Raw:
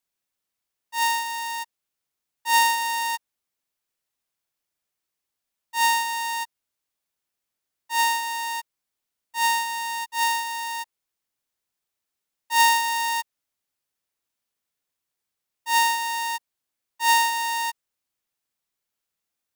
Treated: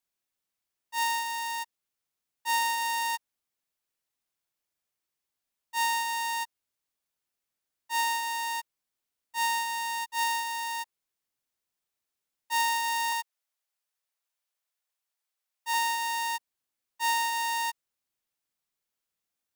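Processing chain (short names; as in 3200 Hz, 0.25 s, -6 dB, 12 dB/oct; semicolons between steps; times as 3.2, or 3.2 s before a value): 13.12–15.74 HPF 520 Hz 24 dB/oct; compressor 4:1, threshold -22 dBFS, peak gain reduction 7 dB; gain -3 dB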